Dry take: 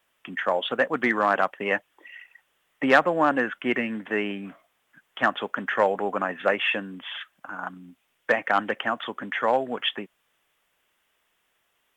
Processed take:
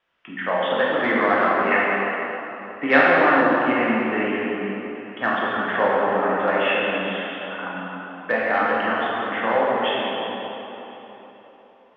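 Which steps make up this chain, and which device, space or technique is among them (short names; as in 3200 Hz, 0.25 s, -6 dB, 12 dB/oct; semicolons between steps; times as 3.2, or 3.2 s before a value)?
LPF 5200 Hz 24 dB/oct; swimming-pool hall (reverb RT60 3.8 s, pre-delay 15 ms, DRR -6.5 dB; high shelf 4700 Hz -7 dB); 1.71–3.41 dynamic EQ 2200 Hz, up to +6 dB, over -33 dBFS, Q 1.8; gain -2.5 dB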